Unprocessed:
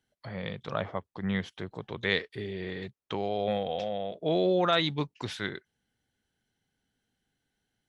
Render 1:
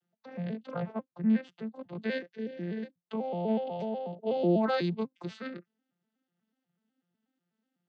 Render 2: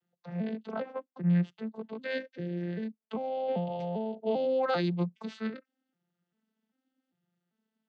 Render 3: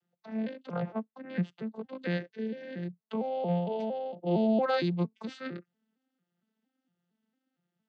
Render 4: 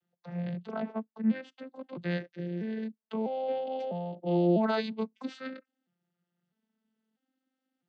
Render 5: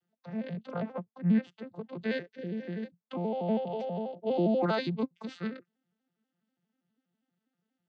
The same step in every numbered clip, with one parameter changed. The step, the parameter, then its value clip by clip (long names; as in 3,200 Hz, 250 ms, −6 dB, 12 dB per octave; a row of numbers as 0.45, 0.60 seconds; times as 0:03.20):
vocoder with an arpeggio as carrier, a note every: 123, 395, 229, 651, 81 milliseconds